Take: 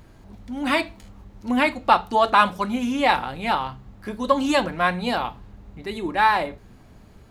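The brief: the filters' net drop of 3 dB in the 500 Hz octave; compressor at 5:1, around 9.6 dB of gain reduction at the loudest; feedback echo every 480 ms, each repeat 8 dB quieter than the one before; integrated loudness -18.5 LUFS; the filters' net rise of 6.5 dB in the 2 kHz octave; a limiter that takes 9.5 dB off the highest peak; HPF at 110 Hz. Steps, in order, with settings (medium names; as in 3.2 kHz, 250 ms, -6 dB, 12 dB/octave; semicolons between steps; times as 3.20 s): high-pass 110 Hz; peaking EQ 500 Hz -4.5 dB; peaking EQ 2 kHz +8.5 dB; compression 5:1, threshold -20 dBFS; peak limiter -18.5 dBFS; feedback delay 480 ms, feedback 40%, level -8 dB; trim +11 dB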